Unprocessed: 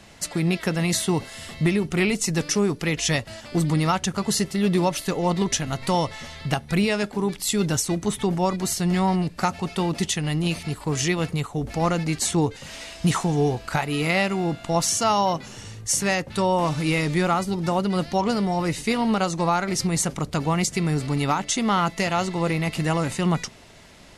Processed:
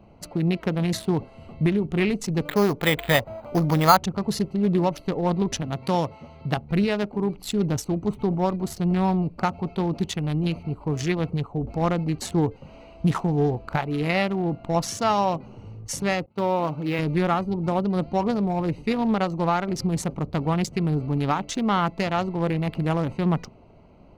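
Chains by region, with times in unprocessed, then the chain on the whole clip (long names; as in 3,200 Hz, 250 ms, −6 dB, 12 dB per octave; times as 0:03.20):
0:02.45–0:03.97: flat-topped bell 1,100 Hz +8.5 dB 2.6 octaves + bad sample-rate conversion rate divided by 8×, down filtered, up hold
0:05.62–0:06.57: high-pass filter 90 Hz + high-shelf EQ 5,000 Hz +3.5 dB
0:16.26–0:16.99: downward expander −27 dBFS + high-pass filter 220 Hz 6 dB per octave + linearly interpolated sample-rate reduction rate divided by 3×
whole clip: adaptive Wiener filter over 25 samples; parametric band 8,200 Hz −10 dB 1.1 octaves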